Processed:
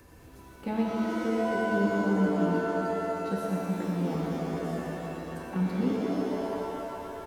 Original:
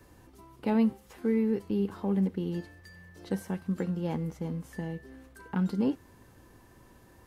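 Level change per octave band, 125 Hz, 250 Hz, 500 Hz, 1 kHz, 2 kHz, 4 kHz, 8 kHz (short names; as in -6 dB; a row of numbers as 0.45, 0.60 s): +1.0 dB, +1.0 dB, +5.5 dB, +10.0 dB, +11.0 dB, +6.0 dB, n/a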